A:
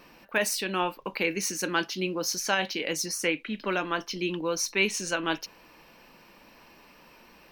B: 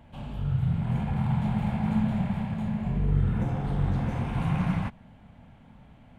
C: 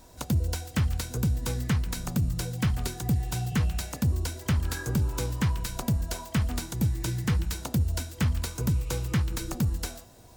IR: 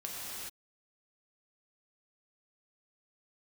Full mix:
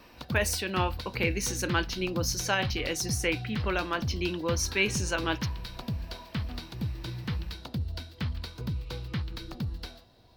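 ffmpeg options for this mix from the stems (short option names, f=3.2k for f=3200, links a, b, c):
-filter_complex "[0:a]volume=-1.5dB[a];[2:a]highshelf=f=5.6k:t=q:w=3:g=-10,volume=-7dB[b];[a][b]amix=inputs=2:normalize=0"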